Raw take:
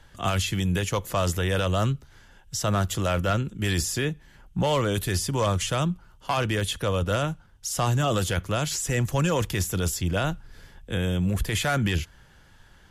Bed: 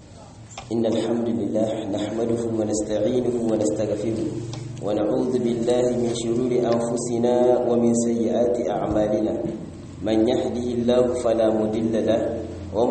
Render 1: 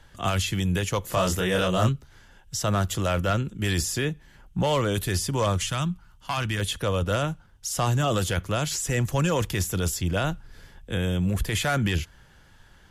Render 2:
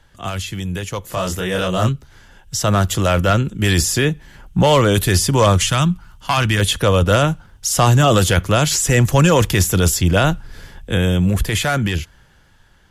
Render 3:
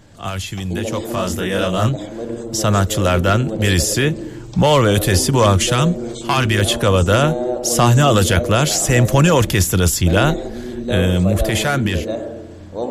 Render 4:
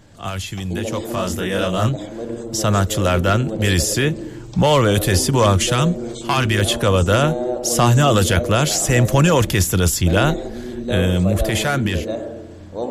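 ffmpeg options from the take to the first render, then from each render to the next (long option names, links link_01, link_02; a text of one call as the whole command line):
ffmpeg -i in.wav -filter_complex "[0:a]asettb=1/sr,asplit=3[link_01][link_02][link_03];[link_01]atrim=end=1.094[link_04];[link_02]atrim=start=1.09:end=1.89,asetpts=PTS-STARTPTS,afade=type=in:duration=0.004:curve=qsin,afade=type=out:start_time=0.796:duration=0.004:curve=qsin,asplit=2[link_05][link_06];[link_06]adelay=27,volume=-2dB[link_07];[link_05][link_07]amix=inputs=2:normalize=0,atrim=end_sample=35280[link_08];[link_03]atrim=start=1.886[link_09];[link_04][link_08]acrossfade=duration=0.004:curve1=hsin:curve2=qsin[link_10];[link_10][link_09]acrossfade=duration=0.004:curve1=qsin:curve2=hsin,asettb=1/sr,asplit=3[link_11][link_12][link_13];[link_11]atrim=end=5.644[link_14];[link_12]atrim=start=5.64:end=6.6,asetpts=PTS-STARTPTS,afade=type=in:duration=0.004:curve=qsin,afade=type=out:start_time=0.956:duration=0.004:curve=qsin,equalizer=frequency=470:width=1.2:gain=-11[link_15];[link_13]atrim=start=6.596[link_16];[link_14][link_15]acrossfade=duration=0.004:curve1=hsin:curve2=qsin[link_17];[link_17][link_16]acrossfade=duration=0.004:curve1=qsin:curve2=hsin" out.wav
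ffmpeg -i in.wav -af "dynaudnorm=framelen=300:gausssize=13:maxgain=12dB" out.wav
ffmpeg -i in.wav -i bed.wav -filter_complex "[1:a]volume=-3.5dB[link_01];[0:a][link_01]amix=inputs=2:normalize=0" out.wav
ffmpeg -i in.wav -af "volume=-1.5dB" out.wav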